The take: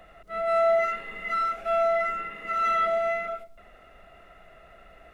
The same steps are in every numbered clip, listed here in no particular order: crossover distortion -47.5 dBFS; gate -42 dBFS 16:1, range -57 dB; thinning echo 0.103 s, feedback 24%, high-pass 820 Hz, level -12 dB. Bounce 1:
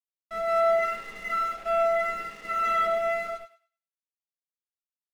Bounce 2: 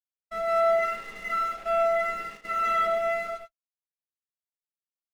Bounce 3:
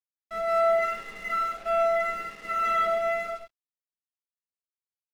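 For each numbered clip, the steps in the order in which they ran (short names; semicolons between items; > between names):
gate > crossover distortion > thinning echo; crossover distortion > thinning echo > gate; thinning echo > gate > crossover distortion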